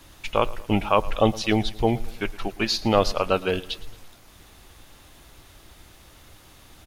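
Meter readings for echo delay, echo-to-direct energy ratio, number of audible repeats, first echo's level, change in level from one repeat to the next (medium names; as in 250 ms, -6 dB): 112 ms, -19.0 dB, 3, -20.0 dB, -6.0 dB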